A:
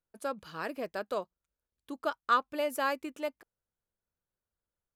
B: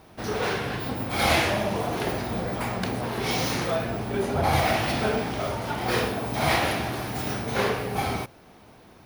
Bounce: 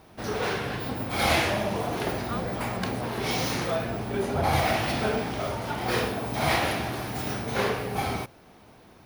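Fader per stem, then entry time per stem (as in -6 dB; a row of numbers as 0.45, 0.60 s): -11.5, -1.5 dB; 0.00, 0.00 s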